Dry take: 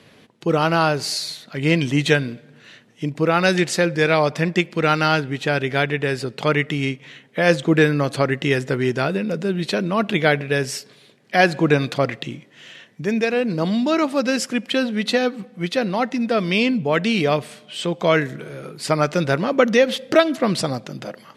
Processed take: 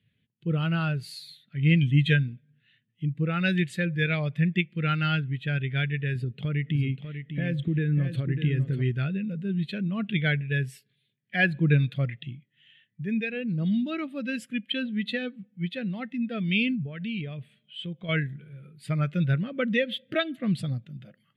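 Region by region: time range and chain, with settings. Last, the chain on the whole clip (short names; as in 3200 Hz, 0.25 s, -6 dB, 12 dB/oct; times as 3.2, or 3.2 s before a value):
6.15–8.82 bell 260 Hz +6 dB 2.7 oct + compressor 3:1, threshold -18 dBFS + echo 0.596 s -6 dB
16.75–18.09 compressor 3:1, threshold -21 dBFS + high shelf 5500 Hz -6 dB
whole clip: EQ curve 110 Hz 0 dB, 300 Hz -13 dB, 940 Hz -19 dB, 1700 Hz -7 dB, 3400 Hz -3 dB, 5400 Hz -17 dB, 12000 Hz -2 dB; spectral expander 1.5:1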